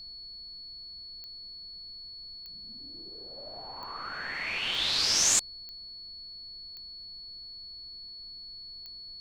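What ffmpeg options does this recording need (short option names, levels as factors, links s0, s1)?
-af "adeclick=t=4,bandreject=f=4400:w=30,afftdn=nr=30:nf=-45"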